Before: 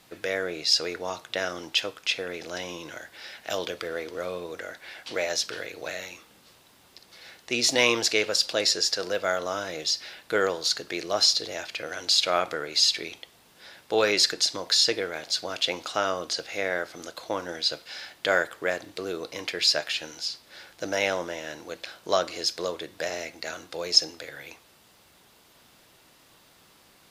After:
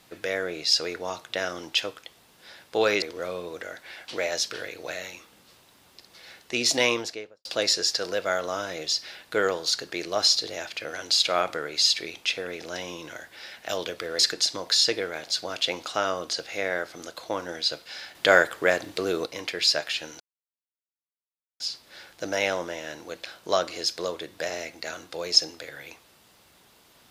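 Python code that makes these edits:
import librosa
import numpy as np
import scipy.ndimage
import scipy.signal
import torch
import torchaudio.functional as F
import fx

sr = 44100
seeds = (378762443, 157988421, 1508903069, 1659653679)

y = fx.studio_fade_out(x, sr, start_s=7.72, length_s=0.71)
y = fx.edit(y, sr, fx.swap(start_s=2.04, length_s=1.96, other_s=13.21, other_length_s=0.98),
    fx.clip_gain(start_s=18.15, length_s=1.11, db=5.5),
    fx.insert_silence(at_s=20.2, length_s=1.4), tone=tone)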